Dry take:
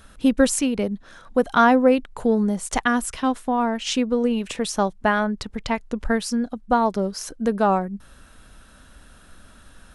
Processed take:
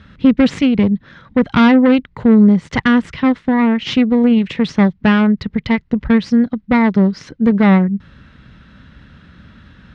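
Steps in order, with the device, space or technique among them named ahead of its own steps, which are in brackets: guitar amplifier (tube stage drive 17 dB, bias 0.75; tone controls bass +14 dB, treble +7 dB; speaker cabinet 99–3800 Hz, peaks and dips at 160 Hz +4 dB, 700 Hz -6 dB, 2000 Hz +8 dB); gain +7 dB

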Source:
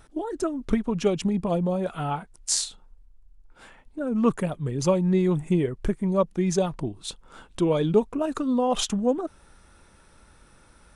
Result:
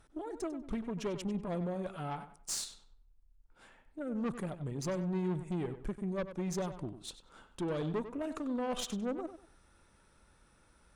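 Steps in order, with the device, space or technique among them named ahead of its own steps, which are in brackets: rockabilly slapback (tube stage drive 22 dB, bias 0.45; tape echo 96 ms, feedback 28%, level -10 dB, low-pass 4000 Hz); gain -8.5 dB

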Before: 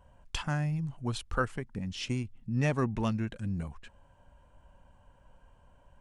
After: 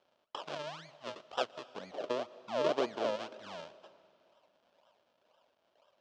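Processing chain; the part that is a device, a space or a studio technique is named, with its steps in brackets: circuit-bent sampling toy (decimation with a swept rate 40×, swing 100% 2 Hz; speaker cabinet 530–5600 Hz, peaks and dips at 630 Hz +7 dB, 2000 Hz -6 dB, 3100 Hz +5 dB); 1.7–3.16 bell 450 Hz +10.5 dB 1.8 oct; digital reverb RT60 2.5 s, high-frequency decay 0.9×, pre-delay 0.105 s, DRR 18 dB; gain -4 dB

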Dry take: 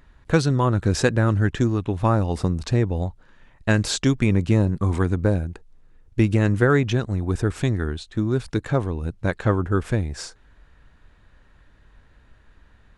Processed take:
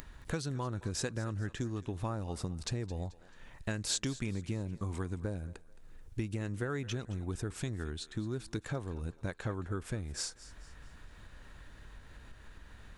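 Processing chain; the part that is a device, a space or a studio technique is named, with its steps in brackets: upward and downward compression (upward compressor, threshold -32 dBFS; compressor 4:1, threshold -26 dBFS, peak gain reduction 12 dB); high shelf 5000 Hz +10.5 dB; thinning echo 0.218 s, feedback 41%, high-pass 440 Hz, level -17 dB; gain -8 dB

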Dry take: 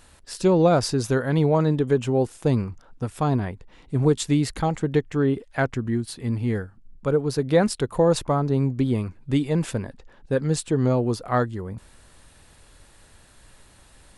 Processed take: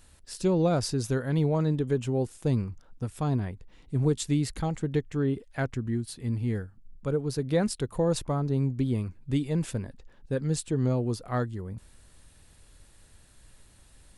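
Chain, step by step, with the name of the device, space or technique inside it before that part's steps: smiley-face EQ (low shelf 180 Hz +5.5 dB; bell 950 Hz -3 dB 1.7 oct; high shelf 5700 Hz +4.5 dB); gain -7 dB

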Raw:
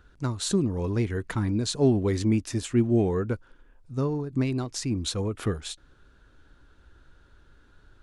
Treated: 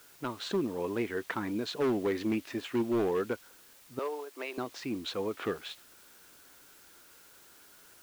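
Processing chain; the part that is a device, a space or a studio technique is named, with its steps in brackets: aircraft radio (BPF 340–2500 Hz; hard clip -24 dBFS, distortion -13 dB; white noise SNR 23 dB); dynamic EQ 3000 Hz, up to +4 dB, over -52 dBFS, Q 1.1; 3.99–4.58 HPF 450 Hz 24 dB/oct

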